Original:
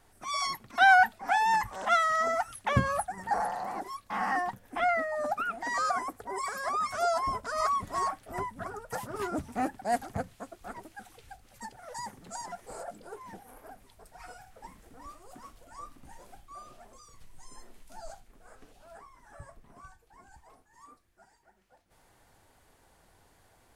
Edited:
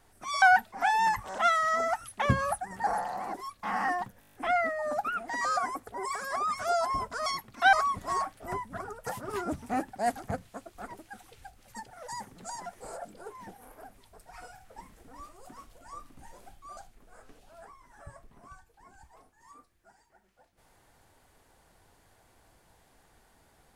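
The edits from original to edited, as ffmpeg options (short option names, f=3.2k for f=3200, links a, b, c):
-filter_complex "[0:a]asplit=12[a][b][c][d][e][f][g][h][i][j][k][l];[a]atrim=end=0.422[m];[b]atrim=start=0.888:end=4.692[n];[c]atrim=start=4.668:end=4.692[o];[d]atrim=start=4.668:end=4.692[p];[e]atrim=start=4.668:end=4.692[q];[f]atrim=start=4.668:end=4.692[r];[g]atrim=start=4.668:end=4.692[s];[h]atrim=start=4.668:end=4.692[t];[i]atrim=start=4.668:end=7.592[u];[j]atrim=start=0.418:end=0.892[v];[k]atrim=start=7.588:end=16.632[w];[l]atrim=start=18.098[x];[m][n]acrossfade=d=0.004:c1=hsin:c2=hsin[y];[y][o]acrossfade=d=0.004:c1=hsin:c2=hsin[z];[z][p]acrossfade=d=0.004:c1=hsin:c2=hsin[aa];[aa][q]acrossfade=d=0.004:c1=hsin:c2=hsin[ab];[ab][r]acrossfade=d=0.004:c1=hsin:c2=hsin[ac];[ac][s]acrossfade=d=0.004:c1=hsin:c2=hsin[ad];[ad][t]acrossfade=d=0.004:c1=hsin:c2=hsin[ae];[ae][u]acrossfade=d=0.004:c1=hsin:c2=hsin[af];[af][v]acrossfade=d=0.004:c1=hsin:c2=hsin[ag];[ag][w]acrossfade=d=0.004:c1=hsin:c2=hsin[ah];[ah][x]acrossfade=d=0.004:c1=hsin:c2=hsin"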